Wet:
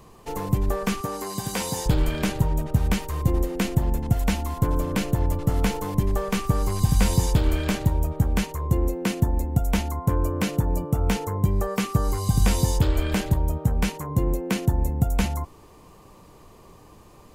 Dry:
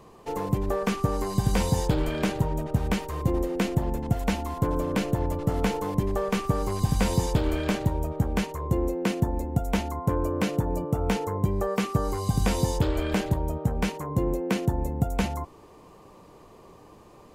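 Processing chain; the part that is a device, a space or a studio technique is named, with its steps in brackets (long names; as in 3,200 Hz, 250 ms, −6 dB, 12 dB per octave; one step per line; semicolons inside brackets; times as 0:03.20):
smiley-face EQ (low-shelf EQ 88 Hz +6.5 dB; parametric band 480 Hz −4 dB 2.1 octaves; high-shelf EQ 7,300 Hz +6.5 dB)
0:01.01–0:01.86: Bessel high-pass filter 290 Hz, order 2
level +2 dB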